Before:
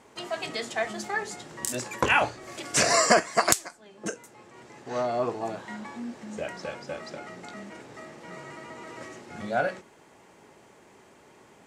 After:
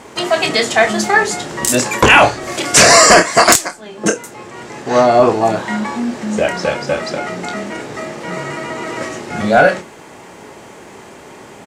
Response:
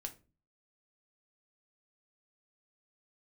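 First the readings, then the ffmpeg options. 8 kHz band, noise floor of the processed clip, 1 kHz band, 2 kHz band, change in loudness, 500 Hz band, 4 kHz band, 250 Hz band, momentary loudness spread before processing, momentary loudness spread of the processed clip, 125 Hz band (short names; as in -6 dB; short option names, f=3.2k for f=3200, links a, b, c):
+15.0 dB, -38 dBFS, +15.0 dB, +15.5 dB, +15.0 dB, +16.0 dB, +16.0 dB, +17.0 dB, 21 LU, 17 LU, +16.5 dB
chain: -filter_complex "[0:a]asplit=2[a][b];[b]adelay=28,volume=-9dB[c];[a][c]amix=inputs=2:normalize=0,apsyclip=19dB,volume=-1.5dB"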